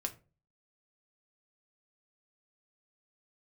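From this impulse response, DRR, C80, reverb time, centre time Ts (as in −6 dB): 4.0 dB, 22.5 dB, 0.35 s, 7 ms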